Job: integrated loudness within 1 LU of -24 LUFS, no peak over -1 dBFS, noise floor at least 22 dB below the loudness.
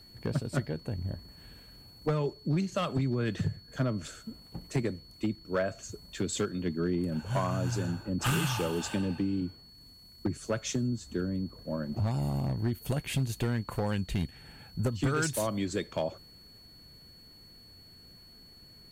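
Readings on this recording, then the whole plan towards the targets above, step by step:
clipped 0.7%; flat tops at -22.0 dBFS; steady tone 4400 Hz; tone level -53 dBFS; loudness -32.5 LUFS; peak -22.0 dBFS; loudness target -24.0 LUFS
-> clip repair -22 dBFS; notch 4400 Hz, Q 30; gain +8.5 dB

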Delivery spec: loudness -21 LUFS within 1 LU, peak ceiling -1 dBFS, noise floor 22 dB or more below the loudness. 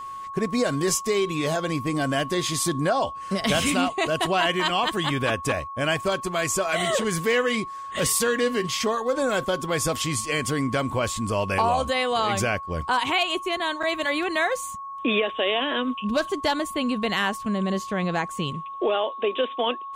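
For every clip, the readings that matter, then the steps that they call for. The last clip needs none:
steady tone 1100 Hz; tone level -33 dBFS; loudness -24.5 LUFS; peak -10.5 dBFS; loudness target -21.0 LUFS
-> notch 1100 Hz, Q 30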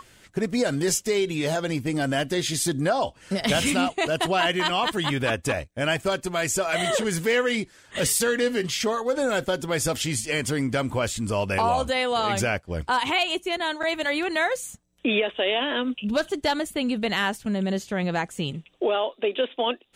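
steady tone none; loudness -25.0 LUFS; peak -10.5 dBFS; loudness target -21.0 LUFS
-> gain +4 dB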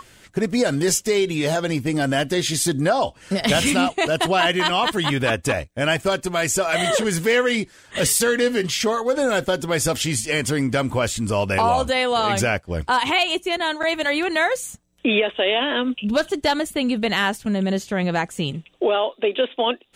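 loudness -21.0 LUFS; peak -6.5 dBFS; noise floor -52 dBFS

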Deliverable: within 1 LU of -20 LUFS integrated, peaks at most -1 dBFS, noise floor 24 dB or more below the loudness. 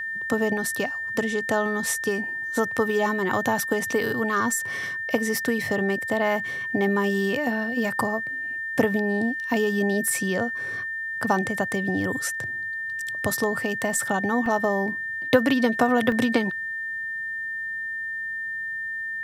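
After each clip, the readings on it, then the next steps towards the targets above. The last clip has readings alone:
dropouts 3; longest dropout 2.0 ms; steady tone 1800 Hz; tone level -28 dBFS; loudness -25.0 LUFS; peak -5.0 dBFS; loudness target -20.0 LUFS
-> interpolate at 10.08/14.46/16.12, 2 ms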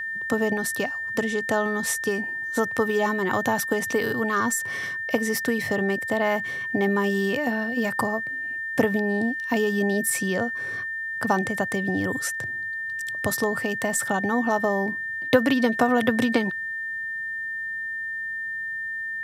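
dropouts 0; steady tone 1800 Hz; tone level -28 dBFS
-> notch 1800 Hz, Q 30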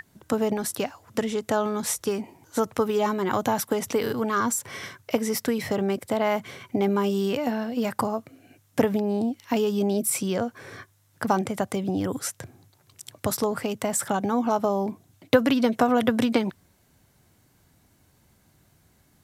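steady tone none; loudness -26.0 LUFS; peak -5.5 dBFS; loudness target -20.0 LUFS
-> gain +6 dB; limiter -1 dBFS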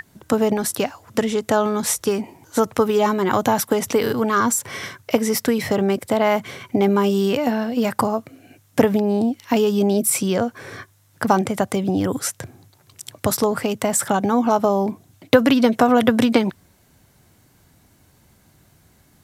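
loudness -20.0 LUFS; peak -1.0 dBFS; noise floor -57 dBFS

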